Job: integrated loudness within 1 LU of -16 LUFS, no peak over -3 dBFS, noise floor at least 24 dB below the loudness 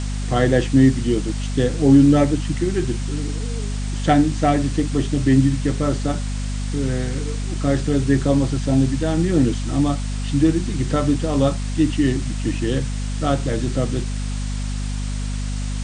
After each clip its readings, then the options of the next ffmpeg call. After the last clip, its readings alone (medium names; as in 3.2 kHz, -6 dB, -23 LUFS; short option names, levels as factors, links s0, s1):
hum 50 Hz; highest harmonic 250 Hz; hum level -22 dBFS; noise floor -25 dBFS; noise floor target -45 dBFS; loudness -20.5 LUFS; peak level -2.5 dBFS; loudness target -16.0 LUFS
-> -af "bandreject=f=50:t=h:w=4,bandreject=f=100:t=h:w=4,bandreject=f=150:t=h:w=4,bandreject=f=200:t=h:w=4,bandreject=f=250:t=h:w=4"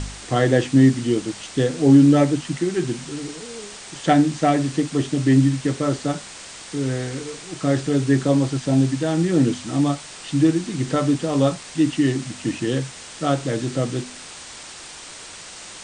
hum not found; noise floor -39 dBFS; noise floor target -45 dBFS
-> -af "afftdn=nr=6:nf=-39"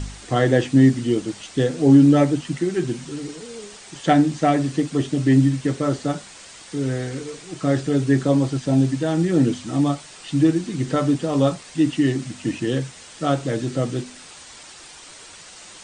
noise floor -43 dBFS; noise floor target -45 dBFS
-> -af "afftdn=nr=6:nf=-43"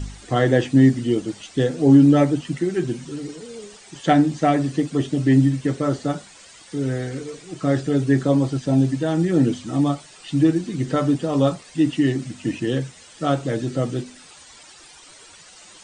noise floor -46 dBFS; loudness -20.5 LUFS; peak level -3.5 dBFS; loudness target -16.0 LUFS
-> -af "volume=1.68,alimiter=limit=0.708:level=0:latency=1"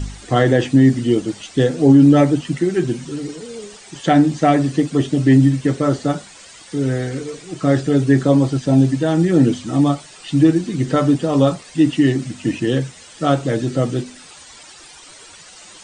loudness -16.5 LUFS; peak level -3.0 dBFS; noise floor -42 dBFS